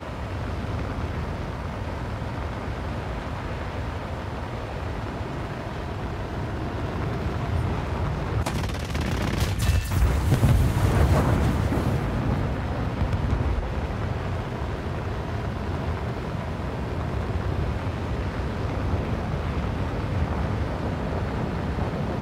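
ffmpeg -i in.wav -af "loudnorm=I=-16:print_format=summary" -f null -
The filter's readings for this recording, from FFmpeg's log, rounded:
Input Integrated:    -27.6 LUFS
Input True Peak:      -7.6 dBTP
Input LRA:             8.1 LU
Input Threshold:     -37.6 LUFS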